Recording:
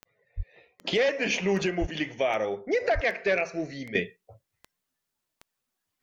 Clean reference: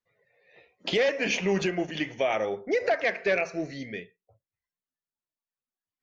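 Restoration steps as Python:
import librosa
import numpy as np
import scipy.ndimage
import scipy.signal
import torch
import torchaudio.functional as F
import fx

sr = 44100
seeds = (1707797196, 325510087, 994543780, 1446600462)

y = fx.fix_declick_ar(x, sr, threshold=10.0)
y = fx.highpass(y, sr, hz=140.0, slope=24, at=(0.36, 0.48), fade=0.02)
y = fx.highpass(y, sr, hz=140.0, slope=24, at=(1.8, 1.92), fade=0.02)
y = fx.highpass(y, sr, hz=140.0, slope=24, at=(2.94, 3.06), fade=0.02)
y = fx.fix_level(y, sr, at_s=3.95, step_db=-12.0)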